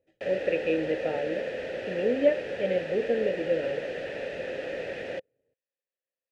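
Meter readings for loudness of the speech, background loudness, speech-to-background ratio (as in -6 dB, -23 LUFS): -29.0 LUFS, -34.5 LUFS, 5.5 dB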